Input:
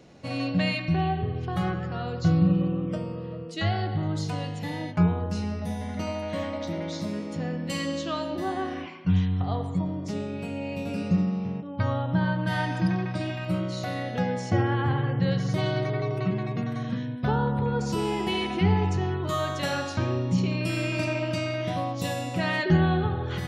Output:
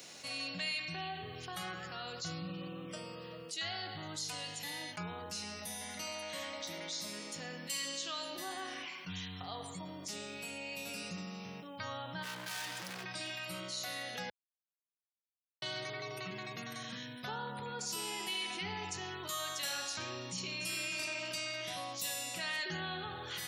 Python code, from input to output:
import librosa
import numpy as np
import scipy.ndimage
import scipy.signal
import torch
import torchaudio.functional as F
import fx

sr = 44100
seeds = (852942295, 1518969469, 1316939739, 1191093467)

y = fx.overload_stage(x, sr, gain_db=30.5, at=(12.22, 13.03), fade=0.02)
y = fx.echo_throw(y, sr, start_s=20.13, length_s=0.46, ms=290, feedback_pct=55, wet_db=-7.5)
y = fx.edit(y, sr, fx.silence(start_s=14.3, length_s=1.32), tone=tone)
y = scipy.signal.sosfilt(scipy.signal.butter(2, 100.0, 'highpass', fs=sr, output='sos'), y)
y = librosa.effects.preemphasis(y, coef=0.97, zi=[0.0])
y = fx.env_flatten(y, sr, amount_pct=50)
y = y * 10.0 ** (1.0 / 20.0)